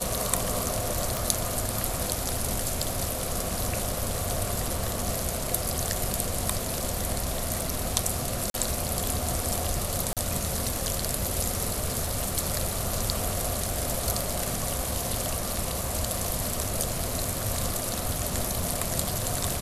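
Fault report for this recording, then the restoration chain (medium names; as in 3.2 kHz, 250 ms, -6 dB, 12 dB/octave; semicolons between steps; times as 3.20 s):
crackle 24 per s -35 dBFS
1.17 s: pop
8.50–8.54 s: dropout 42 ms
10.13–10.17 s: dropout 37 ms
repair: de-click; interpolate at 8.50 s, 42 ms; interpolate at 10.13 s, 37 ms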